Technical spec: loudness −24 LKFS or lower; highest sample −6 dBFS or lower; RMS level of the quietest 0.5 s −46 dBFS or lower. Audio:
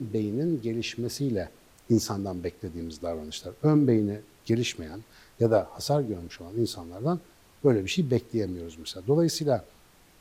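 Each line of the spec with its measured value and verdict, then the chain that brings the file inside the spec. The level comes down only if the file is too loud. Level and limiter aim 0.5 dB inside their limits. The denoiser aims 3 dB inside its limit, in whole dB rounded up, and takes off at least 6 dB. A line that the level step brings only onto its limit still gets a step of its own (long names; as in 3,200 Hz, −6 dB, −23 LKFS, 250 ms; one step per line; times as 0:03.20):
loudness −28.0 LKFS: in spec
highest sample −8.5 dBFS: in spec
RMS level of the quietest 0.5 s −57 dBFS: in spec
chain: no processing needed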